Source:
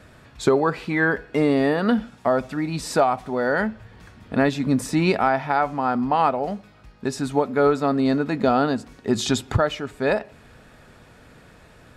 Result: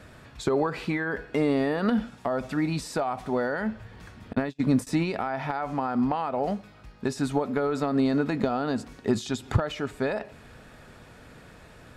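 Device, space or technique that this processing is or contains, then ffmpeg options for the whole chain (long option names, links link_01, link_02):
de-esser from a sidechain: -filter_complex "[0:a]asplit=2[link_01][link_02];[link_02]highpass=frequency=4700:poles=1,apad=whole_len=527706[link_03];[link_01][link_03]sidechaincompress=threshold=-37dB:ratio=16:attack=3.6:release=91,asettb=1/sr,asplit=3[link_04][link_05][link_06];[link_04]atrim=end=4.334[link_07];[link_05]atrim=start=4.33:end=4.87,asetpts=PTS-STARTPTS,afade=type=in:duration=0.004:curve=qsin,afade=type=out:start_time=0.536:duration=0.004:curve=qsin,agate=range=-36dB:threshold=-26dB:ratio=16:detection=peak[link_08];[link_06]atrim=start=4.866[link_09];[link_07][link_08]acrossfade=duration=0.004:curve1=hsin:curve2=qsin[link_10];[link_10][link_09]acrossfade=duration=0.004:curve1=qsin:curve2=hsin"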